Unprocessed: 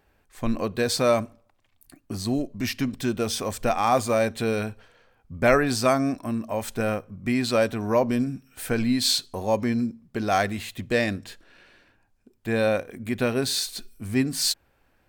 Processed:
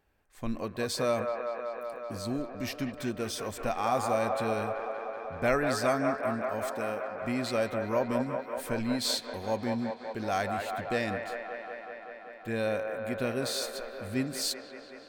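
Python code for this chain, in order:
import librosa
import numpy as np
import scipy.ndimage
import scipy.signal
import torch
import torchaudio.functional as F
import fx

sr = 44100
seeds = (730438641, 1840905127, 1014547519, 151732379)

p1 = fx.highpass(x, sr, hz=300.0, slope=6, at=(6.68, 7.22))
p2 = p1 + fx.echo_wet_bandpass(p1, sr, ms=190, feedback_pct=81, hz=990.0, wet_db=-3.5, dry=0)
y = p2 * librosa.db_to_amplitude(-8.0)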